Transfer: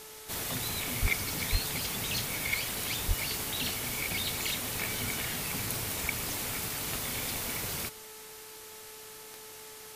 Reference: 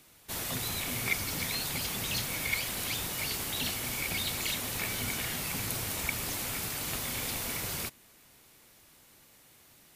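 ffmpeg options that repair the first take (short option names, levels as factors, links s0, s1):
-filter_complex "[0:a]adeclick=t=4,bandreject=f=434.5:t=h:w=4,bandreject=f=869:t=h:w=4,bandreject=f=1303.5:t=h:w=4,bandreject=f=1738:t=h:w=4,bandreject=f=2172.5:t=h:w=4,asplit=3[s0][s1][s2];[s0]afade=t=out:st=1.01:d=0.02[s3];[s1]highpass=f=140:w=0.5412,highpass=f=140:w=1.3066,afade=t=in:st=1.01:d=0.02,afade=t=out:st=1.13:d=0.02[s4];[s2]afade=t=in:st=1.13:d=0.02[s5];[s3][s4][s5]amix=inputs=3:normalize=0,asplit=3[s6][s7][s8];[s6]afade=t=out:st=1.51:d=0.02[s9];[s7]highpass=f=140:w=0.5412,highpass=f=140:w=1.3066,afade=t=in:st=1.51:d=0.02,afade=t=out:st=1.63:d=0.02[s10];[s8]afade=t=in:st=1.63:d=0.02[s11];[s9][s10][s11]amix=inputs=3:normalize=0,asplit=3[s12][s13][s14];[s12]afade=t=out:st=3.07:d=0.02[s15];[s13]highpass=f=140:w=0.5412,highpass=f=140:w=1.3066,afade=t=in:st=3.07:d=0.02,afade=t=out:st=3.19:d=0.02[s16];[s14]afade=t=in:st=3.19:d=0.02[s17];[s15][s16][s17]amix=inputs=3:normalize=0,afftdn=nr=12:nf=-47"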